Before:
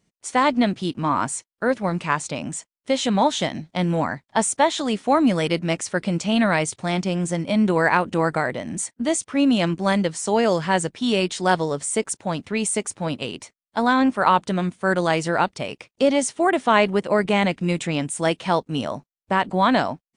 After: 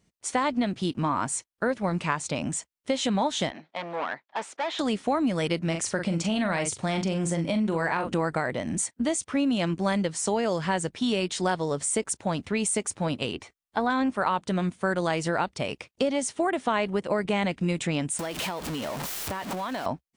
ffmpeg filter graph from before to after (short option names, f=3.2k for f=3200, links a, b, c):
-filter_complex "[0:a]asettb=1/sr,asplit=3[a][b][c];[a]atrim=end=3.504[d];[b]atrim=start=3.5:end=4.79,asetpts=PTS-STARTPTS,afade=t=in:d=0.004:c=qsin,afade=t=out:st=1.286:d=0.004:c=qsin,asoftclip=type=hard:threshold=-24dB,highpass=510,lowpass=3k[e];[c]atrim=start=4.786[f];[d][e]acrossfade=d=0.004:c1=hsin:c2=qsin[g];[g][f]acrossfade=d=0.004:c1=qsin:c2=hsin,asettb=1/sr,asplit=3[h][i][j];[h]atrim=end=5.634[k];[i]atrim=start=5.63:end=8.13,asetpts=PTS-STARTPTS,afade=t=in:d=0.004:c=qsin,afade=t=out:st=2.496:d=0.004:c=qsin,asplit=2[l][m];[m]adelay=42,volume=-8.5dB[n];[l][n]amix=inputs=2:normalize=0,atrim=end_sample=110250,acompressor=threshold=-21dB:ratio=2:attack=3.2:release=140:knee=1:detection=peak[o];[j]atrim=start=8.126[p];[k][o]acrossfade=d=0.004:c1=hsin:c2=qsin[q];[q][p]acrossfade=d=0.004:c1=qsin:c2=hsin,asettb=1/sr,asplit=3[r][s][t];[r]atrim=end=13.334[u];[s]atrim=start=13.33:end=13.9,asetpts=PTS-STARTPTS,afade=t=in:d=0.004:c=qsin,afade=t=out:st=0.566:d=0.004:c=qsin,acrossover=split=3800[v][w];[w]acompressor=threshold=-53dB:ratio=4:attack=1:release=60[x];[v][x]amix=inputs=2:normalize=0,aecho=1:1:2.6:0.31,atrim=end_sample=25137[y];[t]atrim=start=13.896[z];[u][y]acrossfade=d=0.004:c1=hsin:c2=qsin[aa];[aa][z]acrossfade=d=0.004:c1=qsin:c2=hsin,asettb=1/sr,asplit=3[ab][ac][ad];[ab]atrim=end=18.194[ae];[ac]atrim=start=18.19:end=19.86,asetpts=PTS-STARTPTS,afade=t=in:d=0.004:c=qsin,afade=t=out:st=1.666:d=0.004:c=qsin,aeval=exprs='val(0)+0.5*0.0794*sgn(val(0))':c=same,lowshelf=f=190:g=-10.5,acompressor=threshold=-28dB:ratio=12:attack=3.2:release=140:knee=1:detection=peak[af];[ad]atrim=start=19.856[ag];[ae][af]acrossfade=d=0.004:c1=hsin:c2=qsin[ah];[ah][ag]acrossfade=d=0.004:c1=qsin:c2=hsin,equalizer=f=65:w=1.7:g=7,acompressor=threshold=-23dB:ratio=4"